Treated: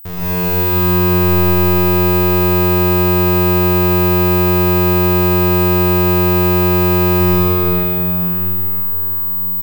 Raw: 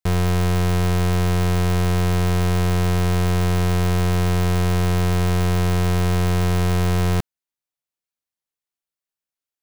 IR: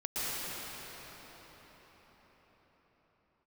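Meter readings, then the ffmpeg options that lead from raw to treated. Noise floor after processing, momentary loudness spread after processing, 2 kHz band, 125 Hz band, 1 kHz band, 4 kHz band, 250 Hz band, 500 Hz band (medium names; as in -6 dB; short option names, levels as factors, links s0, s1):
-18 dBFS, 3 LU, +6.5 dB, +3.0 dB, +8.0 dB, +4.0 dB, +9.0 dB, +10.5 dB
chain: -filter_complex "[0:a]aeval=exprs='val(0)+0.0447*sin(2*PI*16000*n/s)':c=same,aecho=1:1:40|84|132.4|185.6|244.2:0.631|0.398|0.251|0.158|0.1[s0];[1:a]atrim=start_sample=2205[s1];[s0][s1]afir=irnorm=-1:irlink=0,volume=0.668"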